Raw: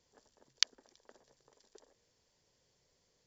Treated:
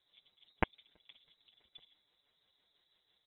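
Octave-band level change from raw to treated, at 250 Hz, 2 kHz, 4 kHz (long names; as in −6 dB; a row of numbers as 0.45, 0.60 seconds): +22.0, +2.5, −17.5 decibels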